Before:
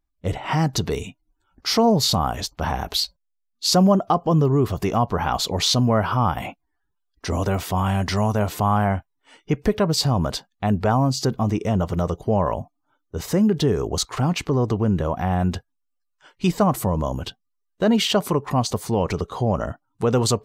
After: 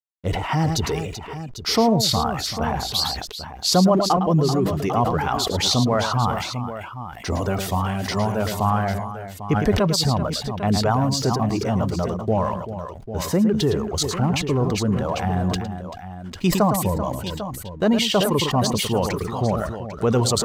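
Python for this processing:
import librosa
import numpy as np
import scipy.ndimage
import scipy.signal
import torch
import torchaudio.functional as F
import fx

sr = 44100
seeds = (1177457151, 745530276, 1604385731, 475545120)

p1 = fx.dereverb_blind(x, sr, rt60_s=1.2)
p2 = fx.backlash(p1, sr, play_db=-44.5)
p3 = p2 + fx.echo_multitap(p2, sr, ms=(109, 387, 797), db=(-11.0, -12.0, -12.0), dry=0)
y = fx.sustainer(p3, sr, db_per_s=49.0)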